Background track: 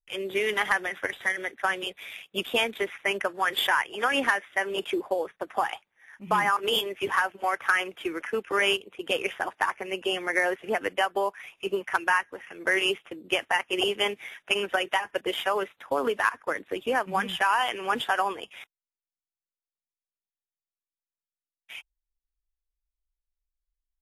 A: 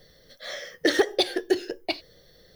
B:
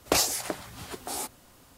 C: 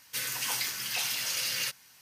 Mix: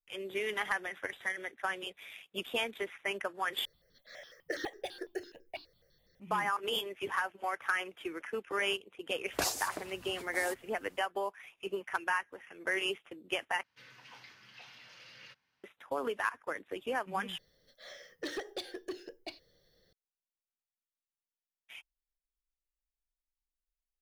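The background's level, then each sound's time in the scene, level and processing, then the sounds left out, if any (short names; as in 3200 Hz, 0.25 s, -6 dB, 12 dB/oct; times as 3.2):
background track -8.5 dB
3.65 replace with A -12 dB + step phaser 12 Hz 810–3100 Hz
9.27 add B -9.5 dB
13.63 replace with C -15 dB + air absorption 270 m
17.38 replace with A -14 dB + soft clip -18 dBFS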